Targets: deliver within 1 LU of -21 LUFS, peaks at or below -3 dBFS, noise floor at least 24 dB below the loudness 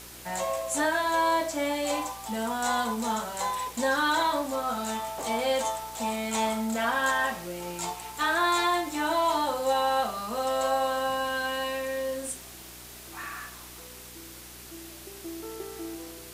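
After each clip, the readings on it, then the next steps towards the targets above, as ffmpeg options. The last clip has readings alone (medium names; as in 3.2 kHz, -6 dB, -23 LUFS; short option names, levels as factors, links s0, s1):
hum 60 Hz; highest harmonic 420 Hz; hum level -50 dBFS; noise floor -45 dBFS; noise floor target -53 dBFS; loudness -28.5 LUFS; peak level -14.5 dBFS; loudness target -21.0 LUFS
-> -af "bandreject=f=60:t=h:w=4,bandreject=f=120:t=h:w=4,bandreject=f=180:t=h:w=4,bandreject=f=240:t=h:w=4,bandreject=f=300:t=h:w=4,bandreject=f=360:t=h:w=4,bandreject=f=420:t=h:w=4"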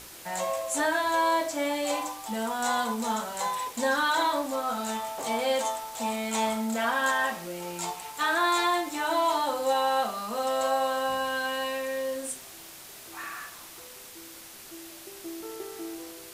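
hum not found; noise floor -46 dBFS; noise floor target -53 dBFS
-> -af "afftdn=nr=7:nf=-46"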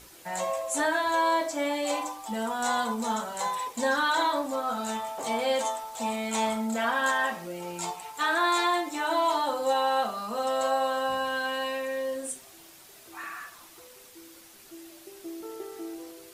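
noise floor -52 dBFS; loudness -28.0 LUFS; peak level -15.0 dBFS; loudness target -21.0 LUFS
-> -af "volume=2.24"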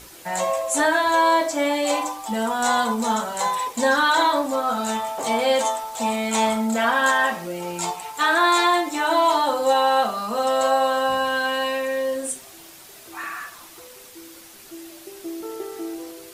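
loudness -21.0 LUFS; peak level -8.0 dBFS; noise floor -45 dBFS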